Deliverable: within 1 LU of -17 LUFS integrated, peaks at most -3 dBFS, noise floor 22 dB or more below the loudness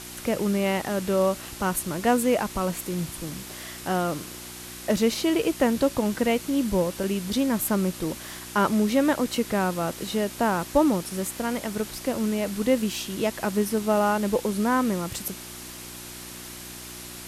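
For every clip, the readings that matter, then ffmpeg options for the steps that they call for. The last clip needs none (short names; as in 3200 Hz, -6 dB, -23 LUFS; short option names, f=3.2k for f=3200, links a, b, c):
hum 60 Hz; harmonics up to 360 Hz; hum level -46 dBFS; noise floor -40 dBFS; noise floor target -48 dBFS; loudness -25.5 LUFS; peak -8.0 dBFS; loudness target -17.0 LUFS
-> -af "bandreject=f=60:t=h:w=4,bandreject=f=120:t=h:w=4,bandreject=f=180:t=h:w=4,bandreject=f=240:t=h:w=4,bandreject=f=300:t=h:w=4,bandreject=f=360:t=h:w=4"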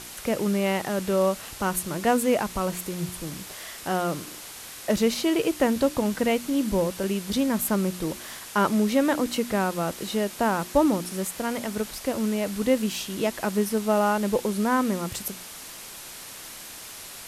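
hum none; noise floor -41 dBFS; noise floor target -48 dBFS
-> -af "afftdn=nr=7:nf=-41"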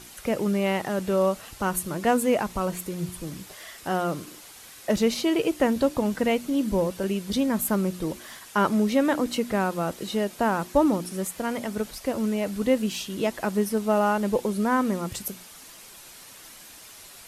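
noise floor -47 dBFS; noise floor target -48 dBFS
-> -af "afftdn=nr=6:nf=-47"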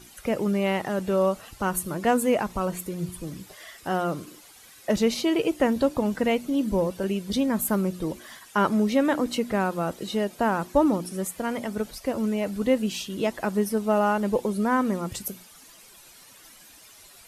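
noise floor -51 dBFS; loudness -26.0 LUFS; peak -8.5 dBFS; loudness target -17.0 LUFS
-> -af "volume=9dB,alimiter=limit=-3dB:level=0:latency=1"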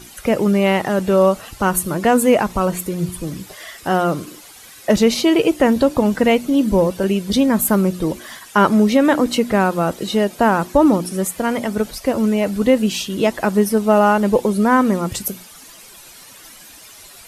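loudness -17.0 LUFS; peak -3.0 dBFS; noise floor -42 dBFS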